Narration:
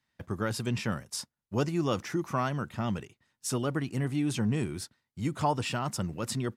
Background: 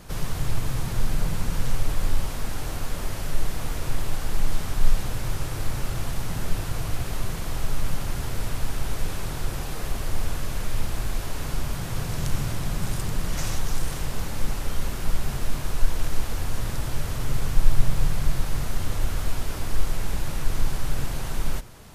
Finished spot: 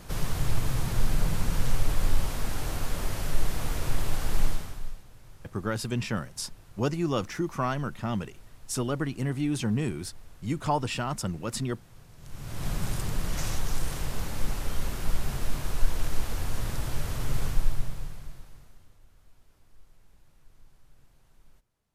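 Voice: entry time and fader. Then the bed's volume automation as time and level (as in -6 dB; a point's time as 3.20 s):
5.25 s, +1.0 dB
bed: 4.45 s -1 dB
5.04 s -23.5 dB
12.17 s -23.5 dB
12.66 s -3 dB
17.46 s -3 dB
19.00 s -33 dB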